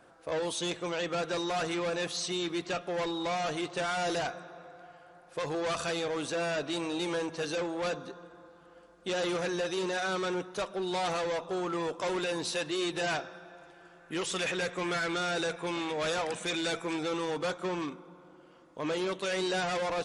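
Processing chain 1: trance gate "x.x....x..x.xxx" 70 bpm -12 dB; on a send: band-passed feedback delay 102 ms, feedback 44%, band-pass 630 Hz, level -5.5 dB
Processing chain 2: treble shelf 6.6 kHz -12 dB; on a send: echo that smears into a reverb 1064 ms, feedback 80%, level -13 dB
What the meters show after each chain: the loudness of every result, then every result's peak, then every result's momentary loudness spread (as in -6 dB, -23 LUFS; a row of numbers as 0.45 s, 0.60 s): -34.5 LUFS, -33.5 LUFS; -22.0 dBFS, -22.0 dBFS; 14 LU, 10 LU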